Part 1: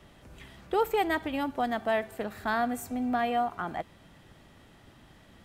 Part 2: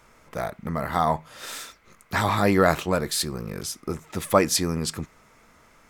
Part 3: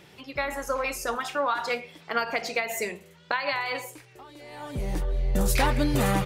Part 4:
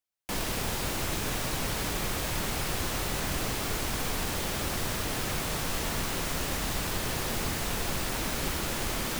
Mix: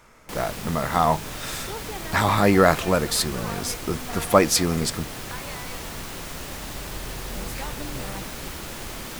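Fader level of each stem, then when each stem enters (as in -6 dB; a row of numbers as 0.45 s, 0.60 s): -11.0 dB, +2.5 dB, -12.0 dB, -3.5 dB; 0.95 s, 0.00 s, 2.00 s, 0.00 s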